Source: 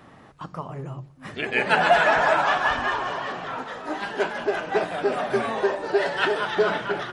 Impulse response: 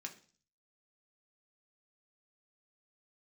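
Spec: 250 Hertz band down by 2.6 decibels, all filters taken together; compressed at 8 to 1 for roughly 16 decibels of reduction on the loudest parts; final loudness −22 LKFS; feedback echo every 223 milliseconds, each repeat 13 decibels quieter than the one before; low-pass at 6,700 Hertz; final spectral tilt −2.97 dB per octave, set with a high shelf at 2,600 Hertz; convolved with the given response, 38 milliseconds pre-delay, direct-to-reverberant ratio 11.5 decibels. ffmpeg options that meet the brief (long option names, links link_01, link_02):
-filter_complex "[0:a]lowpass=6700,equalizer=frequency=250:width_type=o:gain=-4,highshelf=frequency=2600:gain=-6.5,acompressor=threshold=-30dB:ratio=8,aecho=1:1:223|446|669:0.224|0.0493|0.0108,asplit=2[link_01][link_02];[1:a]atrim=start_sample=2205,adelay=38[link_03];[link_02][link_03]afir=irnorm=-1:irlink=0,volume=-8.5dB[link_04];[link_01][link_04]amix=inputs=2:normalize=0,volume=12dB"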